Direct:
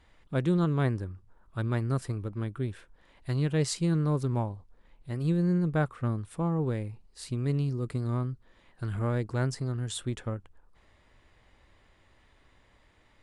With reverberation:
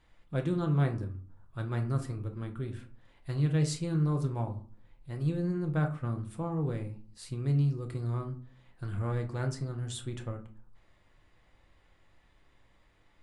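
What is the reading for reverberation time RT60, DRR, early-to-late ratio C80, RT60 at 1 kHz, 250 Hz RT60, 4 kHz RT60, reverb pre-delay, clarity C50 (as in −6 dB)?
0.45 s, 3.5 dB, 17.5 dB, 0.45 s, 0.60 s, 0.25 s, 5 ms, 12.5 dB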